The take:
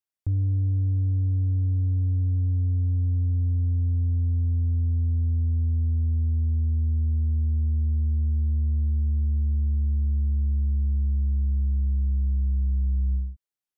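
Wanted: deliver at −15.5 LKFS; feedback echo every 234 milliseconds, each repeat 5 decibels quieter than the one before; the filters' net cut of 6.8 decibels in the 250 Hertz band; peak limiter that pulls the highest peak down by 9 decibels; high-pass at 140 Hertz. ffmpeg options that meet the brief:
ffmpeg -i in.wav -af "highpass=140,equalizer=frequency=250:width_type=o:gain=-7,alimiter=level_in=12dB:limit=-24dB:level=0:latency=1,volume=-12dB,aecho=1:1:234|468|702|936|1170|1404|1638:0.562|0.315|0.176|0.0988|0.0553|0.031|0.0173,volume=24.5dB" out.wav

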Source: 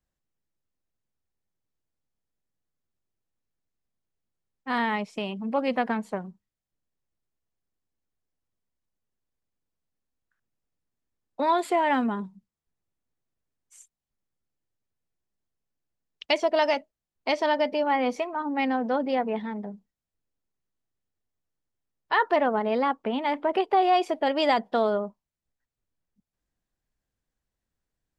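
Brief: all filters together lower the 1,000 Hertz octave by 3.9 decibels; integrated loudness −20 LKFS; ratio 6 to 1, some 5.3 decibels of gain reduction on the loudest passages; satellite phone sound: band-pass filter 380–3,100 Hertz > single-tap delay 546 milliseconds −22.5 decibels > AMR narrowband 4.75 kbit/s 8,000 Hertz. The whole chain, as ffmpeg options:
ffmpeg -i in.wav -af "equalizer=frequency=1000:width_type=o:gain=-5,acompressor=threshold=-25dB:ratio=6,highpass=380,lowpass=3100,aecho=1:1:546:0.075,volume=14dB" -ar 8000 -c:a libopencore_amrnb -b:a 4750 out.amr

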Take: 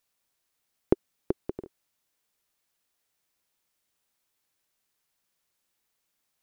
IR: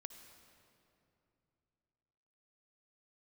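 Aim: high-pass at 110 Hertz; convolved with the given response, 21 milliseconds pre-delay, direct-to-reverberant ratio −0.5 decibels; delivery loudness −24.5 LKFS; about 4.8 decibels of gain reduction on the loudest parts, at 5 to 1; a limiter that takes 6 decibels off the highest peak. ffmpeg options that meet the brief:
-filter_complex "[0:a]highpass=110,acompressor=threshold=-23dB:ratio=5,alimiter=limit=-15.5dB:level=0:latency=1,asplit=2[link_01][link_02];[1:a]atrim=start_sample=2205,adelay=21[link_03];[link_02][link_03]afir=irnorm=-1:irlink=0,volume=5.5dB[link_04];[link_01][link_04]amix=inputs=2:normalize=0,volume=14dB"

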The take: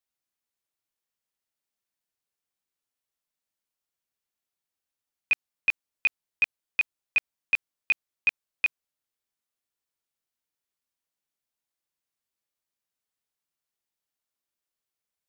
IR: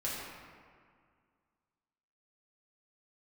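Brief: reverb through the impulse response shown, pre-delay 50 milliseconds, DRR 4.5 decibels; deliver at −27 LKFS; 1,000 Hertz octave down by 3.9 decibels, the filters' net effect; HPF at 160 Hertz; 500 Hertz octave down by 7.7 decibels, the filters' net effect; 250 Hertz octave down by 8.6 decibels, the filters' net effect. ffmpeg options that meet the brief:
-filter_complex "[0:a]highpass=160,equalizer=frequency=250:width_type=o:gain=-8,equalizer=frequency=500:width_type=o:gain=-7,equalizer=frequency=1000:width_type=o:gain=-3,asplit=2[link_01][link_02];[1:a]atrim=start_sample=2205,adelay=50[link_03];[link_02][link_03]afir=irnorm=-1:irlink=0,volume=-9dB[link_04];[link_01][link_04]amix=inputs=2:normalize=0,volume=1.5dB"

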